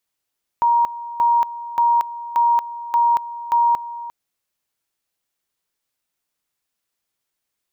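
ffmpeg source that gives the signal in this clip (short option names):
-f lavfi -i "aevalsrc='pow(10,(-12.5-15.5*gte(mod(t,0.58),0.23))/20)*sin(2*PI*943*t)':d=3.48:s=44100"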